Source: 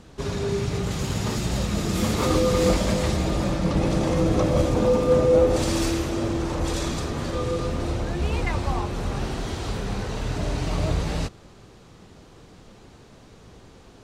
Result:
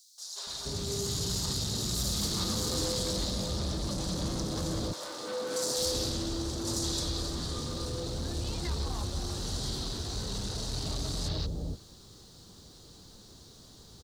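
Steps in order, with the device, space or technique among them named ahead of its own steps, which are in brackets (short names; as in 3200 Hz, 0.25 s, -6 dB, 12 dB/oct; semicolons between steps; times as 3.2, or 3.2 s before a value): open-reel tape (soft clip -23 dBFS, distortion -9 dB; bell 71 Hz +3 dB 0.84 oct; white noise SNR 45 dB); resonant high shelf 3200 Hz +10 dB, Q 3; three bands offset in time highs, mids, lows 0.18/0.47 s, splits 660/4800 Hz; 4.92–5.77 HPF 760 Hz -> 210 Hz 12 dB/oct; gain -6.5 dB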